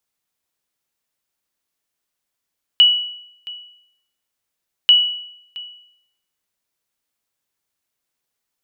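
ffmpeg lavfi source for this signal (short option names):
-f lavfi -i "aevalsrc='0.596*(sin(2*PI*2940*mod(t,2.09))*exp(-6.91*mod(t,2.09)/0.73)+0.0891*sin(2*PI*2940*max(mod(t,2.09)-0.67,0))*exp(-6.91*max(mod(t,2.09)-0.67,0)/0.73))':d=4.18:s=44100"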